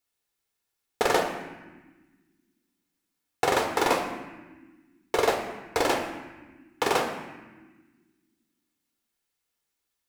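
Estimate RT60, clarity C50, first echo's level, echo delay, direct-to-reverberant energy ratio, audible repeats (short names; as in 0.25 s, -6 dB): 1.4 s, 6.0 dB, none, none, 2.5 dB, none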